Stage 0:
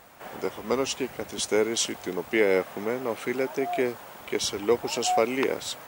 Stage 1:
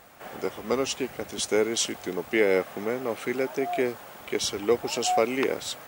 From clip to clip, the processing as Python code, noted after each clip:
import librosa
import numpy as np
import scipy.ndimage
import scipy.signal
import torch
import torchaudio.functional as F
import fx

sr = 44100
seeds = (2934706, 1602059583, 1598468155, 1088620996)

y = fx.notch(x, sr, hz=960.0, q=13.0)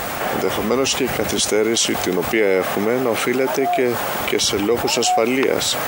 y = fx.env_flatten(x, sr, amount_pct=70)
y = y * librosa.db_to_amplitude(3.0)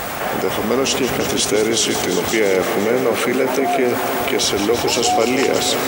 y = fx.echo_heads(x, sr, ms=171, heads='all three', feedback_pct=49, wet_db=-12)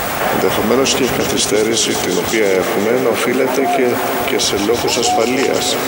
y = fx.rider(x, sr, range_db=10, speed_s=2.0)
y = y * librosa.db_to_amplitude(2.5)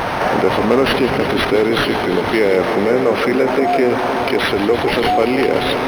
y = np.interp(np.arange(len(x)), np.arange(len(x))[::6], x[::6])